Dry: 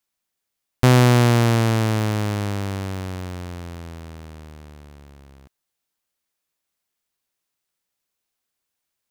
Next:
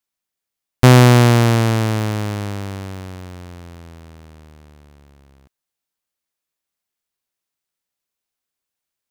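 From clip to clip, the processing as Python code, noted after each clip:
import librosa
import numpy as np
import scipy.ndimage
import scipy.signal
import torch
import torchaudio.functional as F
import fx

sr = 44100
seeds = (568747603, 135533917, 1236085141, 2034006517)

y = fx.upward_expand(x, sr, threshold_db=-30.0, expansion=1.5)
y = F.gain(torch.from_numpy(y), 6.0).numpy()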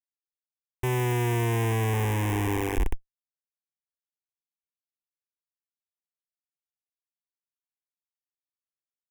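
y = fx.dmg_noise_band(x, sr, seeds[0], low_hz=310.0, high_hz=560.0, level_db=-44.0)
y = fx.schmitt(y, sr, flips_db=-24.0)
y = fx.fixed_phaser(y, sr, hz=890.0, stages=8)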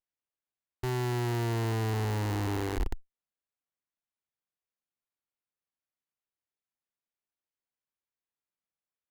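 y = fx.running_max(x, sr, window=9)
y = F.gain(torch.from_numpy(y), -5.0).numpy()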